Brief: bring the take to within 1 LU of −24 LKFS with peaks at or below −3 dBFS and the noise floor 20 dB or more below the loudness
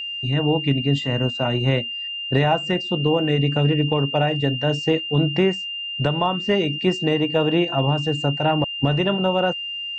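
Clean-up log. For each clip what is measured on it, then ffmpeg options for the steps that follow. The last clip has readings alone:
interfering tone 2,800 Hz; level of the tone −27 dBFS; integrated loudness −21.0 LKFS; sample peak −7.5 dBFS; target loudness −24.0 LKFS
→ -af "bandreject=frequency=2800:width=30"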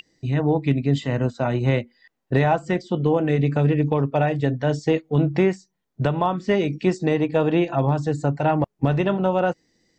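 interfering tone none found; integrated loudness −22.0 LKFS; sample peak −8.5 dBFS; target loudness −24.0 LKFS
→ -af "volume=-2dB"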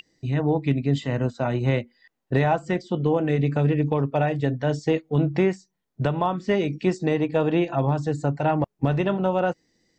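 integrated loudness −24.0 LKFS; sample peak −10.5 dBFS; background noise floor −79 dBFS

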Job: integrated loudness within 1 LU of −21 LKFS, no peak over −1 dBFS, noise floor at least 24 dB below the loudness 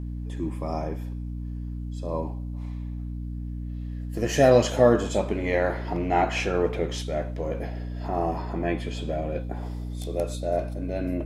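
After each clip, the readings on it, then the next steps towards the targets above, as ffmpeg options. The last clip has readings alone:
mains hum 60 Hz; hum harmonics up to 300 Hz; level of the hum −30 dBFS; integrated loudness −27.5 LKFS; sample peak −6.5 dBFS; target loudness −21.0 LKFS
→ -af "bandreject=frequency=60:width_type=h:width=6,bandreject=frequency=120:width_type=h:width=6,bandreject=frequency=180:width_type=h:width=6,bandreject=frequency=240:width_type=h:width=6,bandreject=frequency=300:width_type=h:width=6"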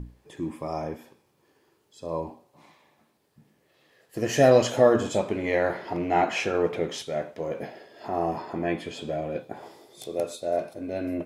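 mains hum none found; integrated loudness −26.5 LKFS; sample peak −7.0 dBFS; target loudness −21.0 LKFS
→ -af "volume=5.5dB"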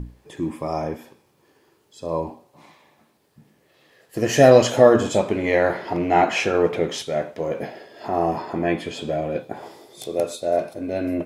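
integrated loudness −21.0 LKFS; sample peak −1.5 dBFS; background noise floor −62 dBFS

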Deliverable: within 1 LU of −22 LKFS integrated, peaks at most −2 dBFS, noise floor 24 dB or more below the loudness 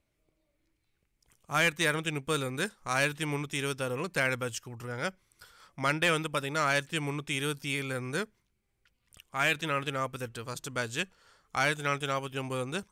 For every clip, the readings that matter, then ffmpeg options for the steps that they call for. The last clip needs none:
integrated loudness −31.0 LKFS; sample peak −16.0 dBFS; target loudness −22.0 LKFS
→ -af "volume=9dB"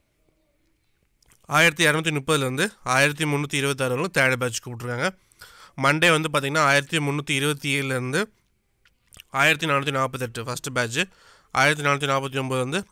integrated loudness −22.0 LKFS; sample peak −7.0 dBFS; background noise floor −69 dBFS

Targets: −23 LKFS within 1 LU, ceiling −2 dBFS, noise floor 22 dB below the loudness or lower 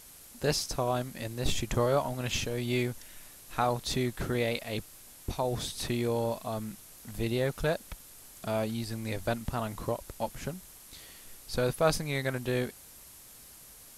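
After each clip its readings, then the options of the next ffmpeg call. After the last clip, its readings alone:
background noise floor −52 dBFS; target noise floor −54 dBFS; integrated loudness −32.0 LKFS; sample peak −12.0 dBFS; target loudness −23.0 LKFS
→ -af "afftdn=noise_reduction=6:noise_floor=-52"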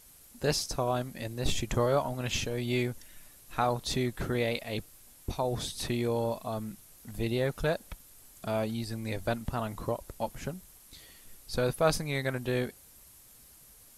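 background noise floor −56 dBFS; integrated loudness −32.0 LKFS; sample peak −12.0 dBFS; target loudness −23.0 LKFS
→ -af "volume=9dB"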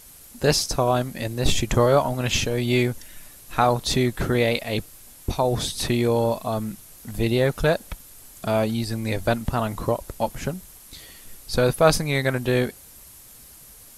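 integrated loudness −23.0 LKFS; sample peak −3.0 dBFS; background noise floor −47 dBFS

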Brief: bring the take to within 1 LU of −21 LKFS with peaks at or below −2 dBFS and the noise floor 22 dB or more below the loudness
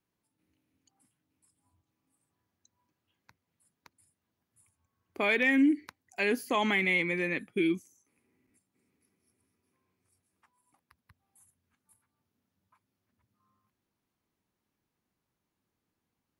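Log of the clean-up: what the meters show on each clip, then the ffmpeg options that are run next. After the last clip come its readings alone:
integrated loudness −28.0 LKFS; sample peak −14.0 dBFS; target loudness −21.0 LKFS
→ -af "volume=7dB"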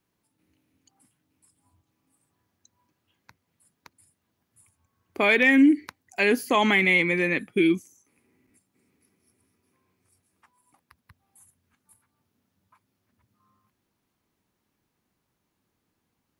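integrated loudness −21.0 LKFS; sample peak −7.0 dBFS; background noise floor −78 dBFS

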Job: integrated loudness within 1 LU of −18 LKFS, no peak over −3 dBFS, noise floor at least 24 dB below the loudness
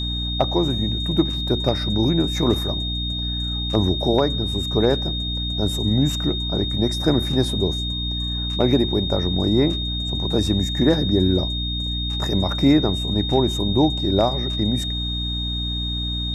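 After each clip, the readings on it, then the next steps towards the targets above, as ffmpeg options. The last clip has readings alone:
mains hum 60 Hz; hum harmonics up to 300 Hz; level of the hum −25 dBFS; interfering tone 3,700 Hz; level of the tone −26 dBFS; integrated loudness −21.0 LKFS; sample peak −5.0 dBFS; target loudness −18.0 LKFS
→ -af "bandreject=frequency=60:width_type=h:width=6,bandreject=frequency=120:width_type=h:width=6,bandreject=frequency=180:width_type=h:width=6,bandreject=frequency=240:width_type=h:width=6,bandreject=frequency=300:width_type=h:width=6"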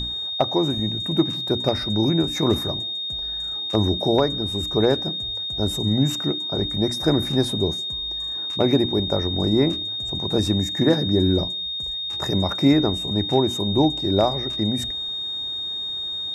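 mains hum none found; interfering tone 3,700 Hz; level of the tone −26 dBFS
→ -af "bandreject=frequency=3700:width=30"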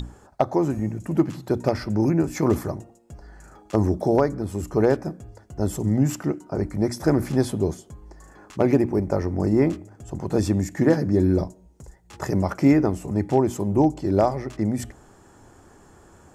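interfering tone none found; integrated loudness −23.0 LKFS; sample peak −6.0 dBFS; target loudness −18.0 LKFS
→ -af "volume=5dB,alimiter=limit=-3dB:level=0:latency=1"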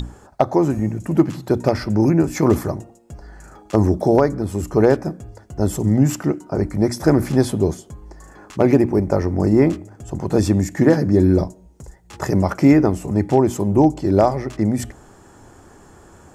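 integrated loudness −18.0 LKFS; sample peak −3.0 dBFS; background noise floor −48 dBFS

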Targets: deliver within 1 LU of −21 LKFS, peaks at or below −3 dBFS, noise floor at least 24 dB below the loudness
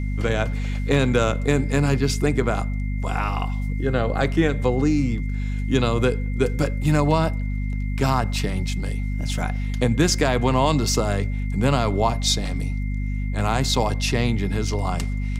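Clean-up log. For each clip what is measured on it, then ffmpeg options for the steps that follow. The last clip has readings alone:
mains hum 50 Hz; hum harmonics up to 250 Hz; level of the hum −22 dBFS; interfering tone 2,100 Hz; level of the tone −41 dBFS; integrated loudness −22.5 LKFS; sample peak −4.5 dBFS; target loudness −21.0 LKFS
→ -af "bandreject=frequency=50:width_type=h:width=4,bandreject=frequency=100:width_type=h:width=4,bandreject=frequency=150:width_type=h:width=4,bandreject=frequency=200:width_type=h:width=4,bandreject=frequency=250:width_type=h:width=4"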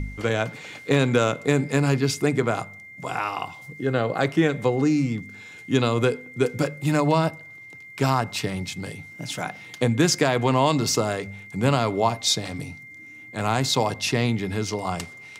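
mains hum none found; interfering tone 2,100 Hz; level of the tone −41 dBFS
→ -af "bandreject=frequency=2100:width=30"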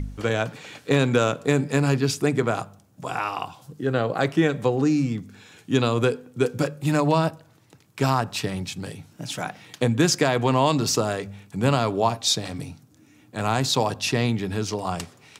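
interfering tone none found; integrated loudness −24.0 LKFS; sample peak −5.0 dBFS; target loudness −21.0 LKFS
→ -af "volume=3dB,alimiter=limit=-3dB:level=0:latency=1"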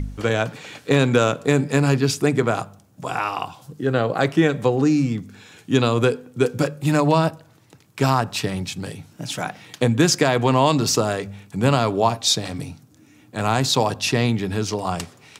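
integrated loudness −21.0 LKFS; sample peak −3.0 dBFS; background noise floor −53 dBFS

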